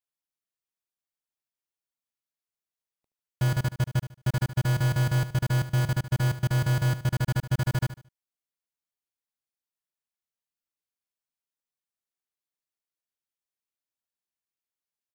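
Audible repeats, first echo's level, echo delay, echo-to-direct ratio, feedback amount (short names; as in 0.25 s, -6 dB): 3, -13.0 dB, 74 ms, -12.5 dB, 29%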